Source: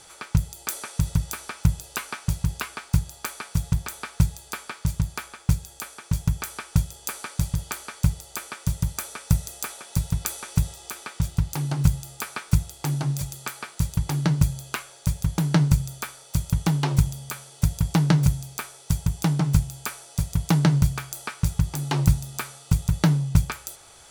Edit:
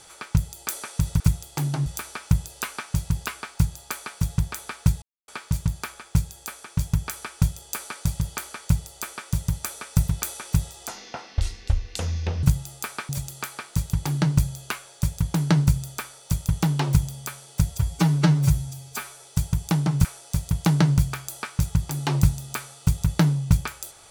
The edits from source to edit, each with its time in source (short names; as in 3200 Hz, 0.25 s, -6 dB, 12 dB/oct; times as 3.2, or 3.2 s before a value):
4.36–4.62 mute
9.42–10.11 cut
10.91–11.81 speed 58%
12.47–13.13 move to 1.2
17.75–18.76 stretch 1.5×
19.58–19.89 cut